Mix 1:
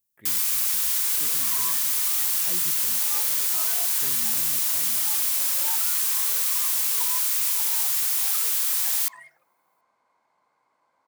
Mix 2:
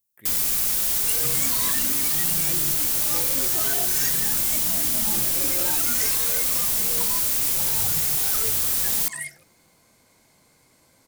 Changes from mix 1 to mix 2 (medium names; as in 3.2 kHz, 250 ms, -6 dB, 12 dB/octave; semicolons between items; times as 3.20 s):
speech: remove low-pass 2.7 kHz 6 dB/octave; first sound: remove Chebyshev high-pass 940 Hz, order 4; second sound: remove band-pass filter 1 kHz, Q 2.7